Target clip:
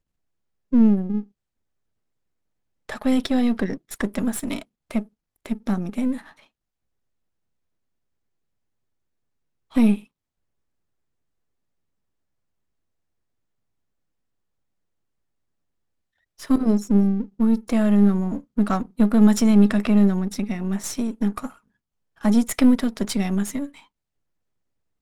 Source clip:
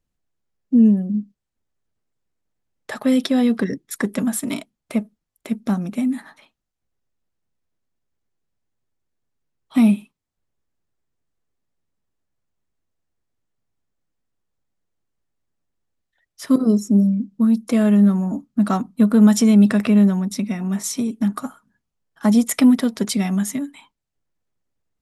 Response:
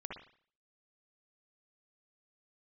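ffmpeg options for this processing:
-af "aeval=exprs='if(lt(val(0),0),0.447*val(0),val(0))':channel_layout=same,highshelf=frequency=6200:gain=-4"

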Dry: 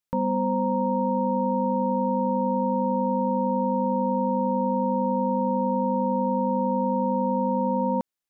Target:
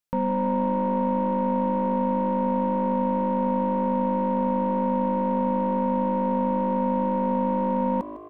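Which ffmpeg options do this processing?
ffmpeg -i in.wav -filter_complex "[0:a]aeval=exprs='0.188*(cos(1*acos(clip(val(0)/0.188,-1,1)))-cos(1*PI/2))+0.00596*(cos(6*acos(clip(val(0)/0.188,-1,1)))-cos(6*PI/2))':channel_layout=same,asplit=6[link_01][link_02][link_03][link_04][link_05][link_06];[link_02]adelay=154,afreqshift=53,volume=-15dB[link_07];[link_03]adelay=308,afreqshift=106,volume=-20.2dB[link_08];[link_04]adelay=462,afreqshift=159,volume=-25.4dB[link_09];[link_05]adelay=616,afreqshift=212,volume=-30.6dB[link_10];[link_06]adelay=770,afreqshift=265,volume=-35.8dB[link_11];[link_01][link_07][link_08][link_09][link_10][link_11]amix=inputs=6:normalize=0" out.wav

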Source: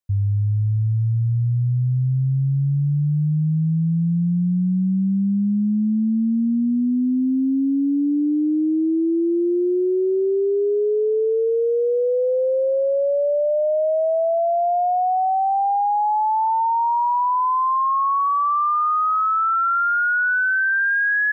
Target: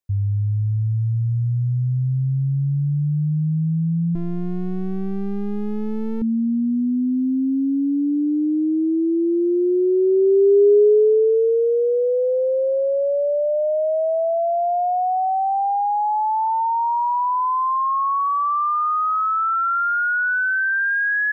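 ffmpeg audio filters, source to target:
ffmpeg -i in.wav -filter_complex "[0:a]equalizer=frequency=410:width_type=o:width=0.24:gain=8,asettb=1/sr,asplit=3[link_01][link_02][link_03];[link_01]atrim=end=4.154[link_04];[link_02]atrim=start=4.15:end=6.22,asetpts=PTS-STARTPTS,afade=type=in:duration=0.004:curve=qsin,afade=type=out:start_time=2.066:duration=0.004:curve=qsin,aeval=exprs='max(val(0),0)':channel_layout=same[link_05];[link_03]atrim=start=6.216[link_06];[link_04][link_05]acrossfade=duration=0.004:curve1=hsin:curve2=qsin[link_07];[link_07][link_06]acrossfade=duration=0.004:curve1=qsin:curve2=hsin,volume=-1dB" out.wav

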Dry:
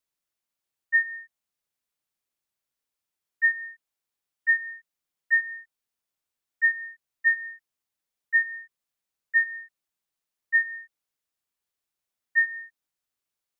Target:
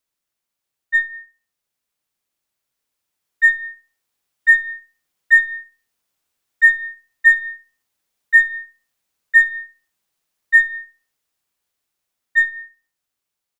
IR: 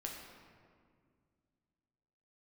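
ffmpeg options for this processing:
-filter_complex "[0:a]dynaudnorm=framelen=880:gausssize=7:maxgain=6dB,aeval=exprs='0.447*(cos(1*acos(clip(val(0)/0.447,-1,1)))-cos(1*PI/2))+0.00562*(cos(8*acos(clip(val(0)/0.447,-1,1)))-cos(8*PI/2))':channel_layout=same,asplit=2[link_01][link_02];[link_02]adelay=67,lowpass=frequency=2000:poles=1,volume=-11dB,asplit=2[link_03][link_04];[link_04]adelay=67,lowpass=frequency=2000:poles=1,volume=0.33,asplit=2[link_05][link_06];[link_06]adelay=67,lowpass=frequency=2000:poles=1,volume=0.33,asplit=2[link_07][link_08];[link_08]adelay=67,lowpass=frequency=2000:poles=1,volume=0.33[link_09];[link_01][link_03][link_05][link_07][link_09]amix=inputs=5:normalize=0,volume=4.5dB"

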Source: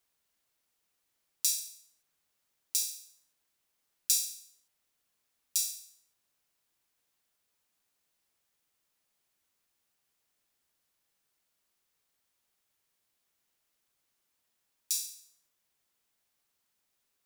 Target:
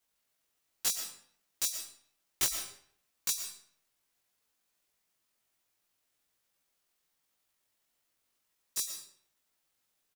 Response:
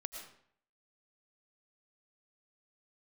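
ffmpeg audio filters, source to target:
-filter_complex "[0:a]atempo=1.7,aeval=exprs='(mod(7.94*val(0)+1,2)-1)/7.94':channel_layout=same,asplit=2[link_01][link_02];[1:a]atrim=start_sample=2205,adelay=18[link_03];[link_02][link_03]afir=irnorm=-1:irlink=0,volume=4dB[link_04];[link_01][link_04]amix=inputs=2:normalize=0,volume=-3dB"

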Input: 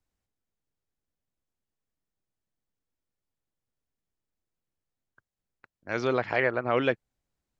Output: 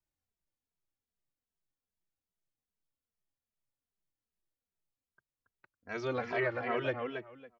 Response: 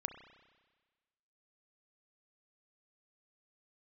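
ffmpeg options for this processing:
-filter_complex "[0:a]asplit=2[link_01][link_02];[link_02]adelay=278,lowpass=frequency=4600:poles=1,volume=-5dB,asplit=2[link_03][link_04];[link_04]adelay=278,lowpass=frequency=4600:poles=1,volume=0.17,asplit=2[link_05][link_06];[link_06]adelay=278,lowpass=frequency=4600:poles=1,volume=0.17[link_07];[link_01][link_03][link_05][link_07]amix=inputs=4:normalize=0,asplit=2[link_08][link_09];[link_09]adelay=2.7,afreqshift=-2.5[link_10];[link_08][link_10]amix=inputs=2:normalize=1,volume=-5dB"

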